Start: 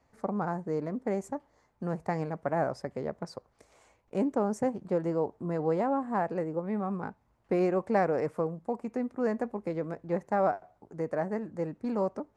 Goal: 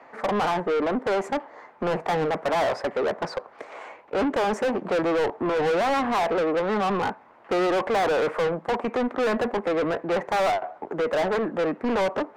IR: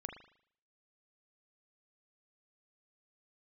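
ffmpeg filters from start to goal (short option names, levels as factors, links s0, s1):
-filter_complex "[0:a]acrossover=split=200 3000:gain=0.178 1 0.141[s0][s1][s2];[s0][s1][s2]amix=inputs=3:normalize=0,asplit=2[s3][s4];[s4]highpass=f=720:p=1,volume=50.1,asoftclip=type=tanh:threshold=0.188[s5];[s3][s5]amix=inputs=2:normalize=0,lowpass=f=3100:p=1,volume=0.501,volume=0.841"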